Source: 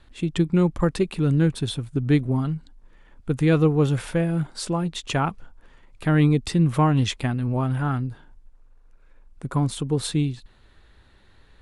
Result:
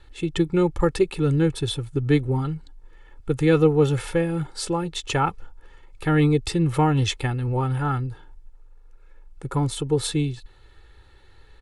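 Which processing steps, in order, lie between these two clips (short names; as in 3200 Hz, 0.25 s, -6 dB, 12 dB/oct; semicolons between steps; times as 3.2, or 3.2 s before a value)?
comb 2.3 ms, depth 69%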